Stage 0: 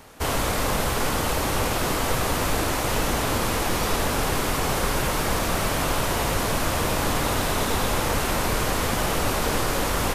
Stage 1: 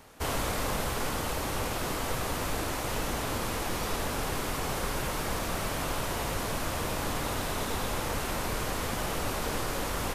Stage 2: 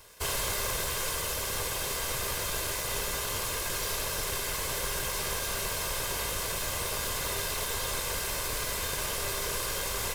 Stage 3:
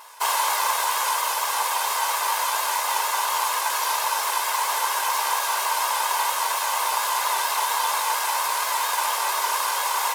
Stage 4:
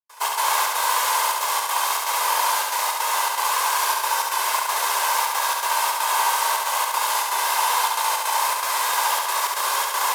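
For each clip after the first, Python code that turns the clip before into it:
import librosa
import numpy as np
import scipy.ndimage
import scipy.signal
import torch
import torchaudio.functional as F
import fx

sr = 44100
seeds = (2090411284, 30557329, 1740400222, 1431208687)

y1 = fx.rider(x, sr, range_db=10, speed_s=2.0)
y1 = y1 * librosa.db_to_amplitude(-8.0)
y2 = fx.lower_of_two(y1, sr, delay_ms=1.9)
y2 = fx.high_shelf(y2, sr, hz=2500.0, db=9.5)
y2 = fx.comb_fb(y2, sr, f0_hz=400.0, decay_s=0.48, harmonics='all', damping=0.0, mix_pct=70)
y2 = y2 * librosa.db_to_amplitude(7.0)
y3 = fx.vibrato(y2, sr, rate_hz=4.3, depth_cents=58.0)
y3 = fx.highpass_res(y3, sr, hz=900.0, q=5.9)
y3 = y3 * librosa.db_to_amplitude(5.5)
y4 = fx.step_gate(y3, sr, bpm=160, pattern='.xx.xxx.xxxxxx', floor_db=-60.0, edge_ms=4.5)
y4 = fx.room_flutter(y4, sr, wall_m=12.0, rt60_s=1.3)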